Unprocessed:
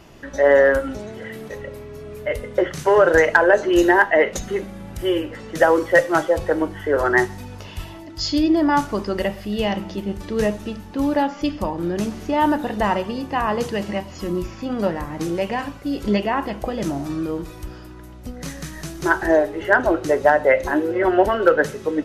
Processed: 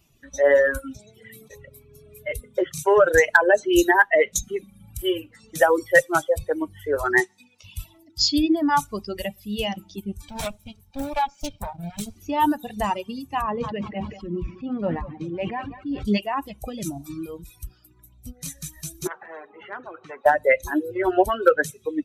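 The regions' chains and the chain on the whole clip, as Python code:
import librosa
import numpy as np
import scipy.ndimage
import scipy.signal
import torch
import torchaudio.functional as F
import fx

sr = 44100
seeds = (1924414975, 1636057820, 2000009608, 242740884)

y = fx.chain(x, sr, fx.bandpass_edges(low_hz=230.0, high_hz=7800.0),
    fx.peak_eq(hz=2000.0, db=5.0, octaves=0.26), at=(7.2, 7.64))
y = fx.chain(y, sr, fx.lower_of_two(delay_ms=1.3),
    fx.doppler_dist(depth_ms=0.46), at=(10.28, 12.16))
y = fx.chain(y, sr, fx.lowpass(hz=2500.0, slope=12),
    fx.echo_feedback(ms=191, feedback_pct=44, wet_db=-9),
    fx.sustainer(db_per_s=32.0), at=(13.42, 16.05))
y = fx.chain(y, sr, fx.ladder_bandpass(hz=530.0, resonance_pct=60),
    fx.spectral_comp(ratio=4.0), at=(19.07, 20.26))
y = fx.bin_expand(y, sr, power=1.5)
y = fx.dereverb_blind(y, sr, rt60_s=0.86)
y = fx.high_shelf(y, sr, hz=4500.0, db=12.0)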